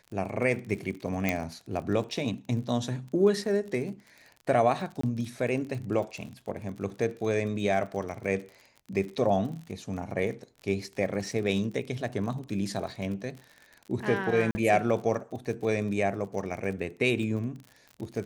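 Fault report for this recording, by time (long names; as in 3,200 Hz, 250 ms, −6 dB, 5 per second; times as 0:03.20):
surface crackle 43 per second −37 dBFS
0:01.29: click −12 dBFS
0:05.01–0:05.03: drop-out 24 ms
0:14.51–0:14.55: drop-out 40 ms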